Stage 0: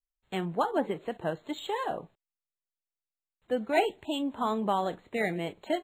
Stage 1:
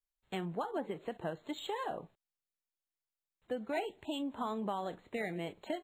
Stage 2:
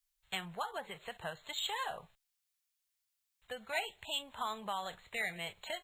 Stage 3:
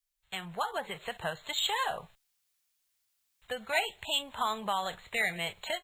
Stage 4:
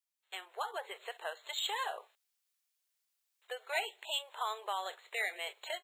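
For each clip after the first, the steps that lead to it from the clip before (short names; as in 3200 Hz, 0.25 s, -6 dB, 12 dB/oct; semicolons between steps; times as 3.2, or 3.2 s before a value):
compressor 3:1, threshold -32 dBFS, peak gain reduction 9.5 dB; gain -3 dB
passive tone stack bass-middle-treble 10-0-10; gain +10.5 dB
AGC gain up to 9.5 dB; gain -2.5 dB
brick-wall FIR high-pass 350 Hz; gain -5.5 dB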